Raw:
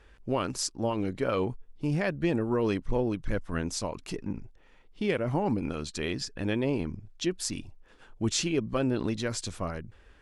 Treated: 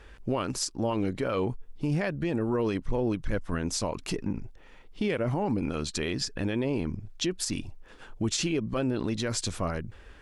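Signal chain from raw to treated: in parallel at +1 dB: compressor, threshold -36 dBFS, peak gain reduction 13 dB; on the sum: limiter -19 dBFS, peak gain reduction 8.5 dB

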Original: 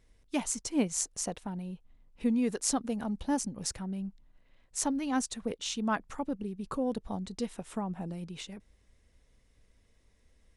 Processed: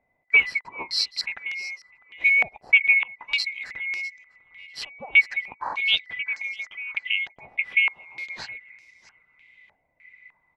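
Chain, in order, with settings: band-swap scrambler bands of 2000 Hz; 7.85–8.25 added noise blue -51 dBFS; in parallel at -9.5 dB: overloaded stage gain 26.5 dB; on the sum: feedback echo 0.65 s, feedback 37%, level -21.5 dB; stepped low-pass 3.3 Hz 720–5500 Hz; gain +1 dB

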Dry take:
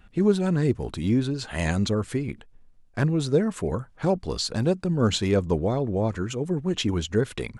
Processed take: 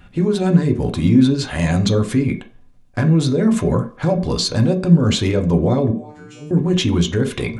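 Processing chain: limiter -20 dBFS, peak gain reduction 11 dB; 5.91–6.51 resonator 150 Hz, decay 0.65 s, harmonics all, mix 100%; on a send: reverb, pre-delay 3 ms, DRR 3 dB; on the sum: gain +8 dB

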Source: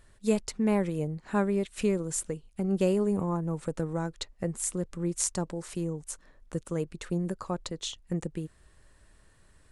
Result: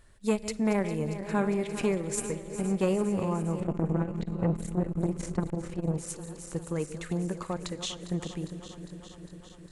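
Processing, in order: regenerating reverse delay 0.202 s, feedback 83%, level -12 dB; 3.6–5.98 tone controls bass +10 dB, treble -15 dB; reverb RT60 3.7 s, pre-delay 42 ms, DRR 19 dB; dynamic EQ 2200 Hz, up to +5 dB, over -53 dBFS, Q 2.1; core saturation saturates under 520 Hz

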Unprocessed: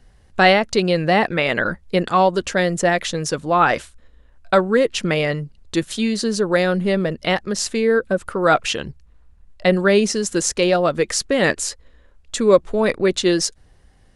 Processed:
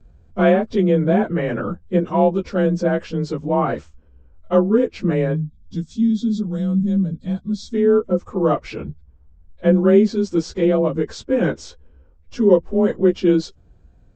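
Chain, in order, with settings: inharmonic rescaling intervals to 92%; spectral gain 5.36–7.74, 300–3200 Hz -16 dB; tilt shelf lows +9 dB, about 860 Hz; gain -3 dB

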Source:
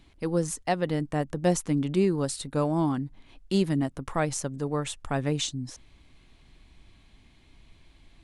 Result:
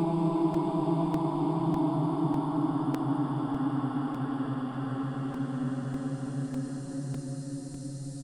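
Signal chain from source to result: feedback echo 0.763 s, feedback 28%, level -14.5 dB; Paulstretch 28×, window 0.25 s, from 2.79; crackling interface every 0.60 s, samples 128, repeat, from 0.54; gain -4 dB

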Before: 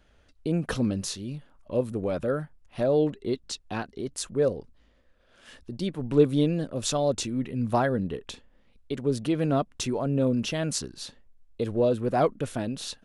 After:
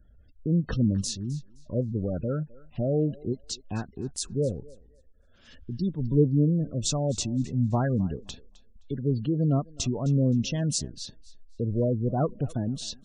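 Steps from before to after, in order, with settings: LPF 7300 Hz 12 dB/oct; spectral gate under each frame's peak -20 dB strong; tone controls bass +13 dB, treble +12 dB; on a send: thinning echo 0.26 s, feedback 24%, high-pass 430 Hz, level -19.5 dB; on the sum: ending taper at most 420 dB/s; gain -6 dB

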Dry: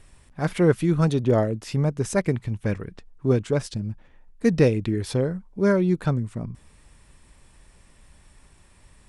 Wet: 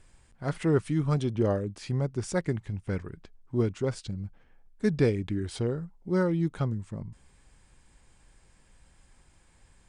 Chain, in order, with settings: speed mistake 48 kHz file played as 44.1 kHz; gain -6 dB

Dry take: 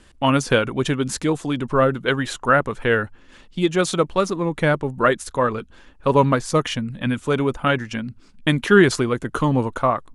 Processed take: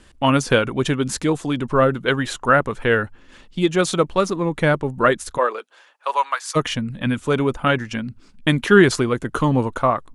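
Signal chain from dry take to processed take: 5.37–6.55 HPF 350 Hz -> 1100 Hz 24 dB/oct; gain +1 dB

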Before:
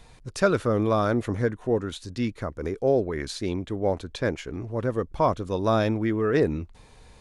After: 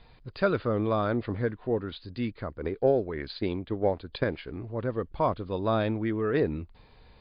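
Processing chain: 2.6–4.24 transient shaper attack +6 dB, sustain -2 dB; gain -3.5 dB; MP3 48 kbps 11025 Hz

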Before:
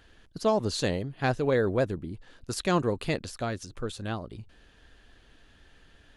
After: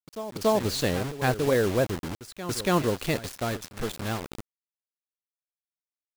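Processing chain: bit-crush 6-bit; pre-echo 0.283 s -13 dB; gain +1.5 dB

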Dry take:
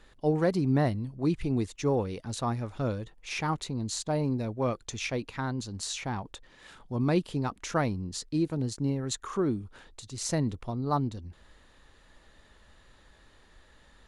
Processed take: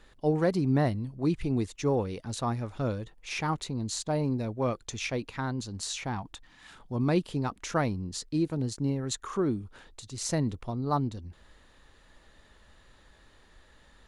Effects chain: spectral gain 6.16–6.73, 330–660 Hz -10 dB

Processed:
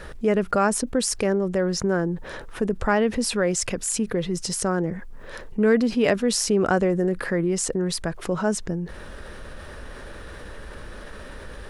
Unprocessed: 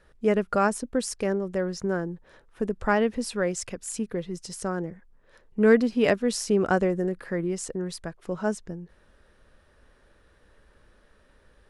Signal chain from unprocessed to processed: fast leveller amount 50%; gain -1.5 dB

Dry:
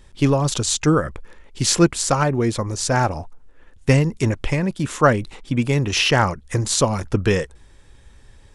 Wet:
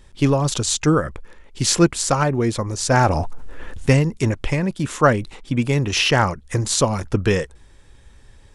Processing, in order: 2.9–3.93 fast leveller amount 50%

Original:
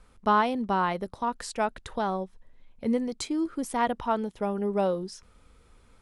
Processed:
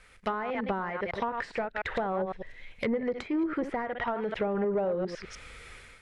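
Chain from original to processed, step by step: reverse delay 0.101 s, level -10.5 dB; low shelf 120 Hz -10 dB; AGC gain up to 10 dB; graphic EQ 250/1000/2000 Hz -10/-8/+12 dB; compressor 16:1, threshold -26 dBFS, peak gain reduction 16 dB; soft clip -25.5 dBFS, distortion -14 dB; treble ducked by the level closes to 1000 Hz, closed at -29 dBFS; gain +4 dB

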